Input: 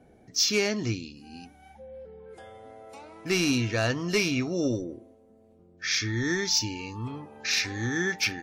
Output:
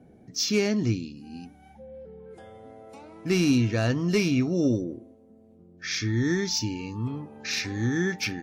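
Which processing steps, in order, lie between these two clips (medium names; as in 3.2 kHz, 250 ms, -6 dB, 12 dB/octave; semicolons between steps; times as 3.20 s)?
peaking EQ 180 Hz +10 dB 2.4 oct; trim -3.5 dB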